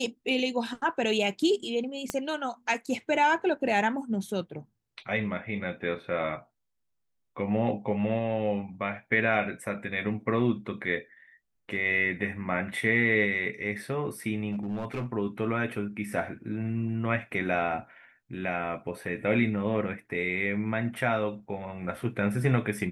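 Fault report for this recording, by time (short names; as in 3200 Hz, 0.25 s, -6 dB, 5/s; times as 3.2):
2.1 pop -14 dBFS
14.52–15.06 clipped -28 dBFS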